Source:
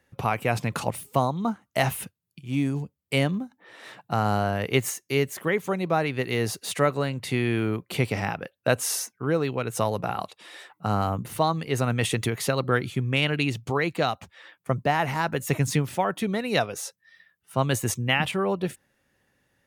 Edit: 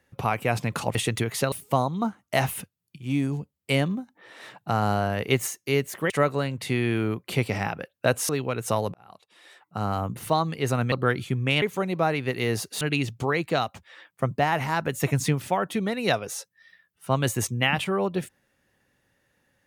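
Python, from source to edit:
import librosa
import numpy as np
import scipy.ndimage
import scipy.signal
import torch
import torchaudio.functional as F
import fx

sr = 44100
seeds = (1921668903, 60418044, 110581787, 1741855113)

y = fx.edit(x, sr, fx.move(start_s=5.53, length_s=1.19, to_s=13.28),
    fx.cut(start_s=8.91, length_s=0.47),
    fx.fade_in_span(start_s=10.03, length_s=1.28),
    fx.move(start_s=12.01, length_s=0.57, to_s=0.95), tone=tone)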